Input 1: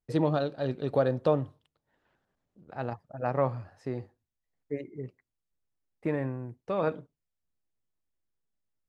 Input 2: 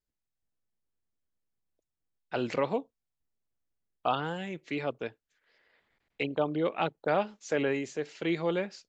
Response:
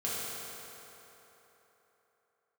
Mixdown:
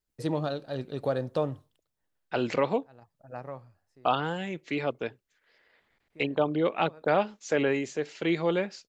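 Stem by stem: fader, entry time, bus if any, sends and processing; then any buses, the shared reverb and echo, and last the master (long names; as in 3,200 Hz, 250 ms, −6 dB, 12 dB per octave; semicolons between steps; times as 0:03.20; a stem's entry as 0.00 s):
−3.5 dB, 0.10 s, no send, high-shelf EQ 4,600 Hz +11.5 dB; automatic ducking −20 dB, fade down 0.70 s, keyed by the second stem
+3.0 dB, 0.00 s, no send, no processing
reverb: not used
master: no processing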